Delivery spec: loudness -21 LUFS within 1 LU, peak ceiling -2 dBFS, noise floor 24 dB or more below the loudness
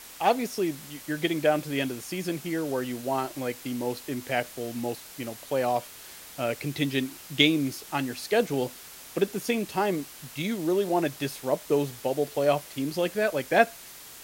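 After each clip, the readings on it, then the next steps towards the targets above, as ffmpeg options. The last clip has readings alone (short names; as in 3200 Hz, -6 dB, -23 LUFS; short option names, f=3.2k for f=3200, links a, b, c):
noise floor -46 dBFS; noise floor target -52 dBFS; loudness -28.0 LUFS; peak -5.0 dBFS; loudness target -21.0 LUFS
-> -af "afftdn=nr=6:nf=-46"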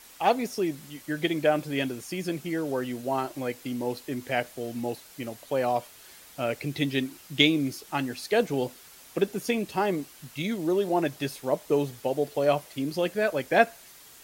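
noise floor -51 dBFS; noise floor target -53 dBFS
-> -af "afftdn=nr=6:nf=-51"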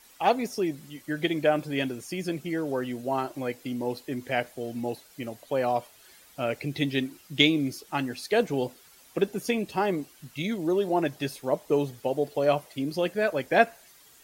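noise floor -55 dBFS; loudness -28.5 LUFS; peak -5.5 dBFS; loudness target -21.0 LUFS
-> -af "volume=7.5dB,alimiter=limit=-2dB:level=0:latency=1"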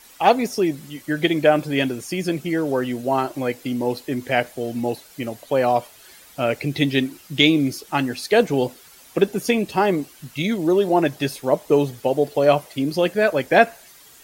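loudness -21.0 LUFS; peak -2.0 dBFS; noise floor -48 dBFS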